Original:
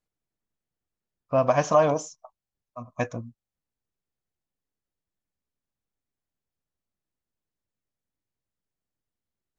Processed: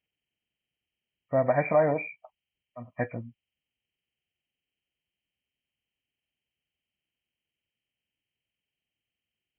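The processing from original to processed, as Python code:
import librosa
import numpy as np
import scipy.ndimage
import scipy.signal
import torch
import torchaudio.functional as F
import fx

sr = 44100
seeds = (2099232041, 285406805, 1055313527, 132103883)

y = fx.freq_compress(x, sr, knee_hz=1700.0, ratio=4.0)
y = scipy.signal.sosfilt(scipy.signal.butter(2, 49.0, 'highpass', fs=sr, output='sos'), y)
y = fx.peak_eq(y, sr, hz=1100.0, db=-12.0, octaves=0.29)
y = y * librosa.db_to_amplitude(-2.0)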